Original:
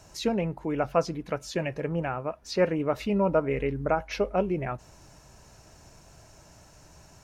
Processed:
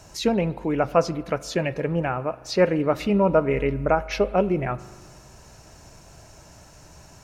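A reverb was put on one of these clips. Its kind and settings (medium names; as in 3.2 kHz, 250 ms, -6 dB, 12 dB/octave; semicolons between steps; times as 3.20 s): spring tank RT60 1.6 s, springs 39 ms, chirp 40 ms, DRR 17 dB; trim +5 dB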